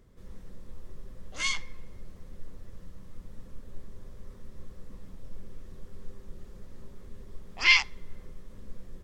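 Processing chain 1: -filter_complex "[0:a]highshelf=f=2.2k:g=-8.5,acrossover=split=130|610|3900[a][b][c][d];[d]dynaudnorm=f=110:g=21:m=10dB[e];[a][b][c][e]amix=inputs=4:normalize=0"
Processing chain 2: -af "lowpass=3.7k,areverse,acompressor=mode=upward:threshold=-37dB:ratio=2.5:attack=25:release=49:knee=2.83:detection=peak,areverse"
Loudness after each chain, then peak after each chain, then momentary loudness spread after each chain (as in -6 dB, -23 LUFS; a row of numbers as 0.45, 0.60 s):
-27.0, -26.0 LUFS; -10.0, -9.0 dBFS; 15, 16 LU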